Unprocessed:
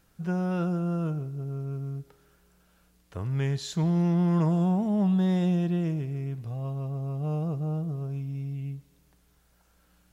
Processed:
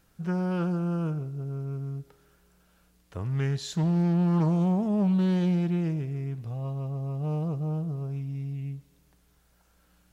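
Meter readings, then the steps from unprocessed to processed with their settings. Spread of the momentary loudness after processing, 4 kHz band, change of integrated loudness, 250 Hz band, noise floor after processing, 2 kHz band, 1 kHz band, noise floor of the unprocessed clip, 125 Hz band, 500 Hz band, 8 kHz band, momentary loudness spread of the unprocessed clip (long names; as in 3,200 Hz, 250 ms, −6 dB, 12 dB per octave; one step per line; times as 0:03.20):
11 LU, 0.0 dB, 0.0 dB, 0.0 dB, −65 dBFS, +0.5 dB, −0.5 dB, −65 dBFS, 0.0 dB, −0.5 dB, can't be measured, 11 LU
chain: highs frequency-modulated by the lows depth 0.18 ms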